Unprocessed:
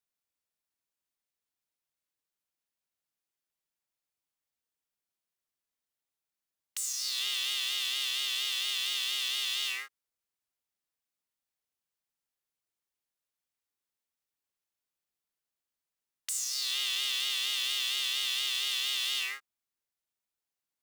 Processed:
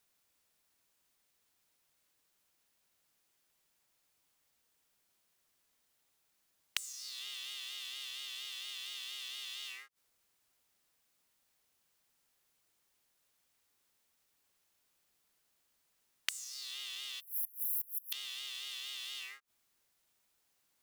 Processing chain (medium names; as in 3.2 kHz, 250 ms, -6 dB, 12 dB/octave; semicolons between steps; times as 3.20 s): spectral selection erased 17.20–18.13 s, 250–11000 Hz; inverted gate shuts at -32 dBFS, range -25 dB; trim +13 dB